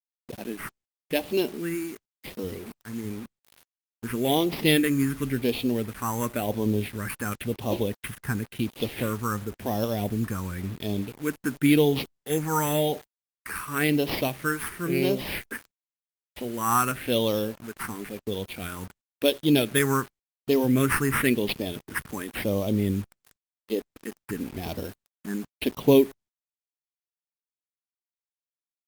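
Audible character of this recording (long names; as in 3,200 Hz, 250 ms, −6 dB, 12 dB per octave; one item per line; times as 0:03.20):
aliases and images of a low sample rate 6,900 Hz, jitter 0%
phaser sweep stages 4, 0.94 Hz, lowest notch 600–1,500 Hz
a quantiser's noise floor 8 bits, dither none
Opus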